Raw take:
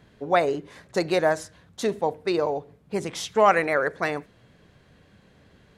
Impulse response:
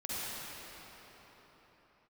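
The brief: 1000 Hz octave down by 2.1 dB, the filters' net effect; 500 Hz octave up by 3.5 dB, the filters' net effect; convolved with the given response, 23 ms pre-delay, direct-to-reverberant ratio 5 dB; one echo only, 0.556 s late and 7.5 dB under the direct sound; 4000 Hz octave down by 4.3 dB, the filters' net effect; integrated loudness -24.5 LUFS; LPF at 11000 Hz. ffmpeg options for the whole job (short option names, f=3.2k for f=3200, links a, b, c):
-filter_complex "[0:a]lowpass=11k,equalizer=f=500:t=o:g=6,equalizer=f=1k:t=o:g=-5.5,equalizer=f=4k:t=o:g=-5,aecho=1:1:556:0.422,asplit=2[a][b];[1:a]atrim=start_sample=2205,adelay=23[c];[b][c]afir=irnorm=-1:irlink=0,volume=-10dB[d];[a][d]amix=inputs=2:normalize=0,volume=-2.5dB"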